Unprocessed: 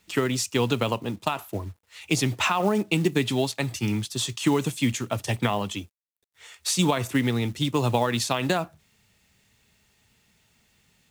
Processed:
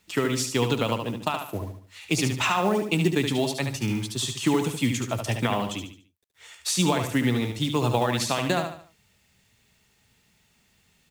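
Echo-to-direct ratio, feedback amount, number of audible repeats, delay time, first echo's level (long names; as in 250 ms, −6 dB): −6.0 dB, 37%, 4, 73 ms, −6.5 dB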